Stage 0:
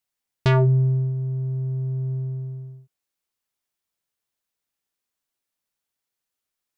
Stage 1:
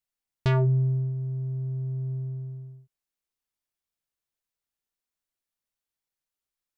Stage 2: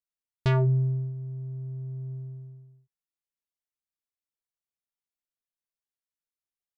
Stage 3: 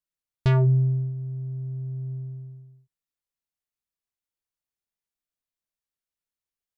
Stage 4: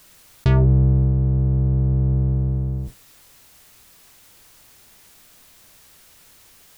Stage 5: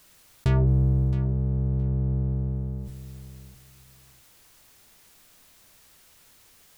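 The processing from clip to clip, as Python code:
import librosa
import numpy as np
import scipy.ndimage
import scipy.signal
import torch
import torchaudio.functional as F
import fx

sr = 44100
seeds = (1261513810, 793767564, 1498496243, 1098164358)

y1 = fx.low_shelf(x, sr, hz=61.0, db=11.0)
y1 = y1 * librosa.db_to_amplitude(-6.5)
y2 = fx.upward_expand(y1, sr, threshold_db=-41.0, expansion=1.5)
y3 = fx.low_shelf(y2, sr, hz=150.0, db=6.5)
y4 = fx.octave_divider(y3, sr, octaves=1, level_db=-2.0)
y4 = fx.env_flatten(y4, sr, amount_pct=70)
y4 = y4 * librosa.db_to_amplitude(1.5)
y5 = fx.tracing_dist(y4, sr, depth_ms=0.045)
y5 = fx.echo_feedback(y5, sr, ms=668, feedback_pct=17, wet_db=-14.0)
y5 = y5 * librosa.db_to_amplitude(-5.5)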